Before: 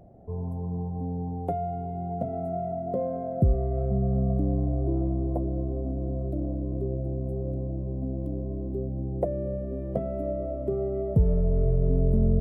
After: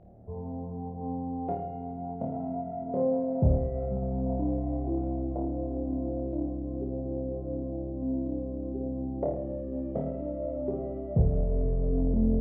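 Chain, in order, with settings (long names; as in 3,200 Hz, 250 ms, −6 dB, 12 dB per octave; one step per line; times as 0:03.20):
high-frequency loss of the air 290 metres
flutter between parallel walls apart 4.6 metres, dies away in 0.72 s
highs frequency-modulated by the lows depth 0.42 ms
level −4 dB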